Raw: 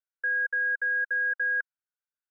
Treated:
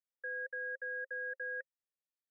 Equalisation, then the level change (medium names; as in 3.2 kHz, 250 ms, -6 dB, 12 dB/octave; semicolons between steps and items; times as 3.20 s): cascade formant filter e; +3.0 dB